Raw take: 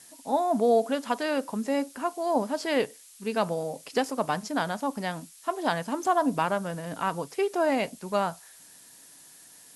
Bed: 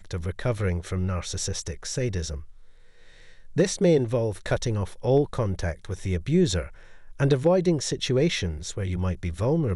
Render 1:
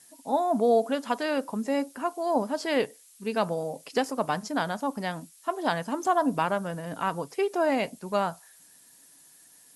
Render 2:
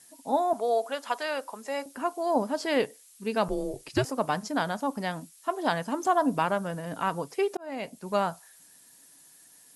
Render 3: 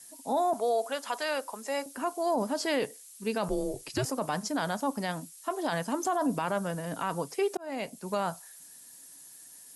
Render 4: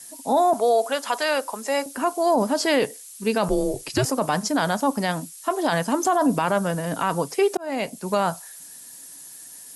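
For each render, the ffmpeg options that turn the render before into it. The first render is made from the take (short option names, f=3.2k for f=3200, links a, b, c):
-af "afftdn=nr=6:nf=-52"
-filter_complex "[0:a]asettb=1/sr,asplit=3[a][b][c];[a]atrim=end=0.534[d];[b]atrim=start=0.53:end=1.86,asetpts=PTS-STARTPTS,afade=t=in:d=0.004:c=qsin,afade=t=out:st=1.326:d=0.004:c=qsin,highpass=600[e];[c]atrim=start=1.856[f];[d][e]acrossfade=d=0.004:c1=hsin:c2=qsin[g];[g][f]acrossfade=d=0.004:c1=qsin:c2=hsin,asettb=1/sr,asplit=3[h][i][j];[h]atrim=end=3.484[k];[i]atrim=start=3.48:end=4.05,asetpts=PTS-STARTPTS,afade=t=in:d=0.004:c=qsin,afade=t=out:st=0.566:d=0.004:c=qsin,afreqshift=-140[l];[j]atrim=start=4.046[m];[k][l]acrossfade=d=0.004:c1=hsin:c2=qsin[n];[n][m]acrossfade=d=0.004:c1=qsin:c2=hsin,asplit=2[o][p];[o]atrim=end=7.57,asetpts=PTS-STARTPTS,afade=t=out:st=7.566:d=0.004:c=hsin[q];[p]atrim=start=7.57,asetpts=PTS-STARTPTS,afade=t=in:d=0.54[r];[q][r]concat=n=2:v=0:a=1"
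-filter_complex "[0:a]acrossover=split=130|1500|4900[a][b][c][d];[d]acontrast=31[e];[a][b][c][e]amix=inputs=4:normalize=0,alimiter=limit=-20dB:level=0:latency=1:release=11"
-af "volume=8.5dB"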